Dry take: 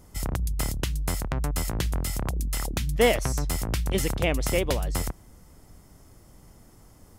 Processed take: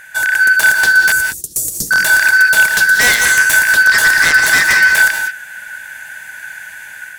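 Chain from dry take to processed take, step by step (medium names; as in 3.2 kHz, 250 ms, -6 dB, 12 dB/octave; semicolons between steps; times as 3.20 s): four frequency bands reordered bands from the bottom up 4123; 1.12–1.91 s: inverse Chebyshev band-stop 1.1–2.4 kHz, stop band 70 dB; 2.67–3.59 s: tone controls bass +2 dB, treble +6 dB; in parallel at -1.5 dB: peak limiter -18.5 dBFS, peak gain reduction 12.5 dB; on the sum: level rider gain up to 6 dB; sine folder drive 10 dB, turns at -3 dBFS; gated-style reverb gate 220 ms rising, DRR 5.5 dB; trim -5.5 dB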